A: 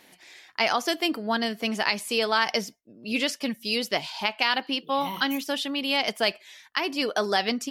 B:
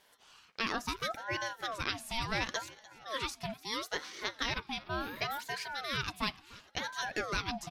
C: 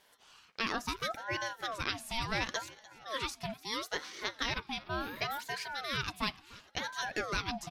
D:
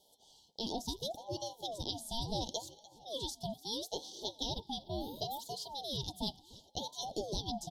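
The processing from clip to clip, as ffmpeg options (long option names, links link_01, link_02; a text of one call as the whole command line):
ffmpeg -i in.wav -af "aecho=1:1:298|596|894|1192:0.1|0.051|0.026|0.0133,aeval=exprs='val(0)*sin(2*PI*860*n/s+860*0.5/0.72*sin(2*PI*0.72*n/s))':channel_layout=same,volume=-7.5dB" out.wav
ffmpeg -i in.wav -af anull out.wav
ffmpeg -i in.wav -af "asuperstop=centerf=1700:order=20:qfactor=0.75" out.wav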